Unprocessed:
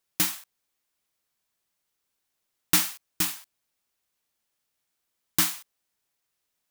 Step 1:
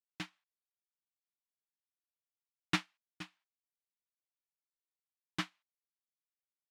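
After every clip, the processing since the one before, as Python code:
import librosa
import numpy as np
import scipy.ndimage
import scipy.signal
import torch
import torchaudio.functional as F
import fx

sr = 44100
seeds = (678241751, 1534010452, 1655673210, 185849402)

y = scipy.signal.sosfilt(scipy.signal.cheby1(2, 1.0, [110.0, 2800.0], 'bandpass', fs=sr, output='sos'), x)
y = fx.upward_expand(y, sr, threshold_db=-42.0, expansion=2.5)
y = F.gain(torch.from_numpy(y), -2.5).numpy()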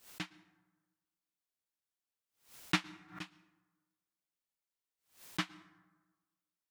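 y = fx.rev_plate(x, sr, seeds[0], rt60_s=1.3, hf_ratio=0.45, predelay_ms=100, drr_db=19.0)
y = fx.pre_swell(y, sr, db_per_s=150.0)
y = F.gain(torch.from_numpy(y), 1.0).numpy()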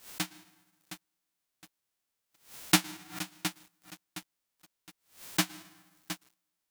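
y = fx.envelope_flatten(x, sr, power=0.3)
y = fx.echo_crushed(y, sr, ms=715, feedback_pct=35, bits=9, wet_db=-10.0)
y = F.gain(torch.from_numpy(y), 8.0).numpy()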